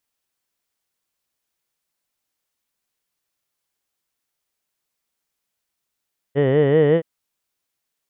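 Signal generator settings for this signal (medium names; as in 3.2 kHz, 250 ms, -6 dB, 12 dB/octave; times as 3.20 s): formant vowel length 0.67 s, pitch 134 Hz, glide +3 st, vibrato depth 1.2 st, F1 470 Hz, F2 1.9 kHz, F3 3 kHz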